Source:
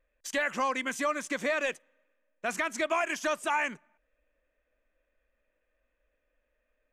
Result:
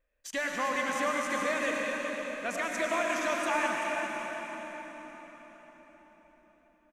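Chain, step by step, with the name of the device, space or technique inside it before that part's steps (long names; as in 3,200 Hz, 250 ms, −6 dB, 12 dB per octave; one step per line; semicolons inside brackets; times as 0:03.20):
cave (single-tap delay 386 ms −10 dB; convolution reverb RT60 5.1 s, pre-delay 82 ms, DRR −1.5 dB)
level −3.5 dB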